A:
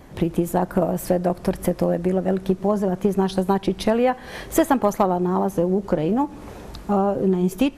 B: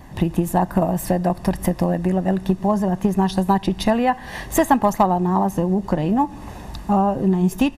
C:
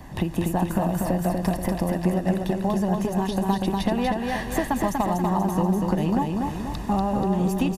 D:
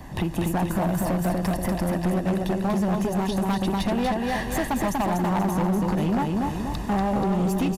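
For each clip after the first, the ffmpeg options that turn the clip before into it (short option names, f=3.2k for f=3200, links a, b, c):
-af "aecho=1:1:1.1:0.54,volume=1.5dB"
-filter_complex "[0:a]acrossover=split=170|2300[a][b][c];[a]acompressor=threshold=-30dB:ratio=4[d];[b]acompressor=threshold=-24dB:ratio=4[e];[c]acompressor=threshold=-38dB:ratio=4[f];[d][e][f]amix=inputs=3:normalize=0,asplit=2[g][h];[h]aecho=0:1:241|482|723|964|1205|1446:0.668|0.321|0.154|0.0739|0.0355|0.017[i];[g][i]amix=inputs=2:normalize=0"
-af "asoftclip=type=hard:threshold=-21dB,volume=1.5dB"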